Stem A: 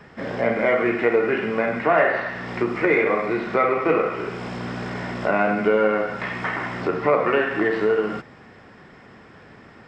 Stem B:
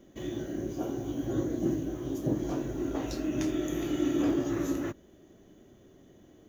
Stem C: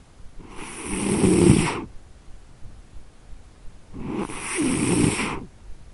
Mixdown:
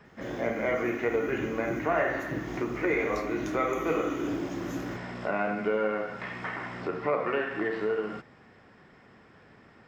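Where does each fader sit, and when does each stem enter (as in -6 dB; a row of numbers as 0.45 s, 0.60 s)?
-9.0 dB, -5.0 dB, mute; 0.00 s, 0.05 s, mute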